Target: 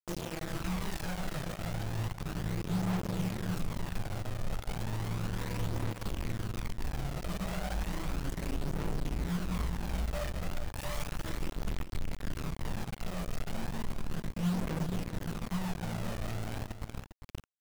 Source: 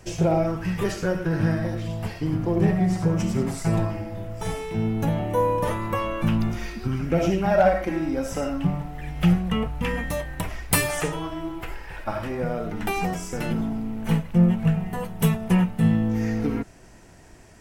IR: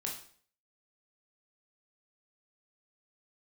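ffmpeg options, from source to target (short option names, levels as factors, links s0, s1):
-filter_complex "[0:a]adynamicsmooth=sensitivity=6.5:basefreq=3600,alimiter=limit=0.0891:level=0:latency=1:release=157,flanger=delay=3:depth=9:regen=10:speed=1.3:shape=triangular,asubboost=boost=11:cutoff=130,acompressor=threshold=0.0447:ratio=20,asettb=1/sr,asplit=3[s0][s1][s2];[s0]atrim=end=8.884[s3];[s1]atrim=start=8.88:end=11.31,asetpts=PTS-STARTPTS,afade=t=in:d=0.004:c=qsin,afade=t=out:st=2.426:d=0.004:c=qsin,equalizer=f=590:t=o:w=0.33:g=13.5[s4];[s2]atrim=start=11.306[s5];[s3][s4]acrossfade=d=0.004:c1=hsin:c2=qsin[s6];[s6][s5]acrossfade=d=0.004:c1=qsin:c2=hsin[s7];[1:a]atrim=start_sample=2205[s8];[s7][s8]afir=irnorm=-1:irlink=0,acrusher=bits=4:mix=0:aa=0.000001,aphaser=in_gain=1:out_gain=1:delay=1.7:decay=0.37:speed=0.34:type=triangular,aecho=1:1:401:0.282,volume=0.398"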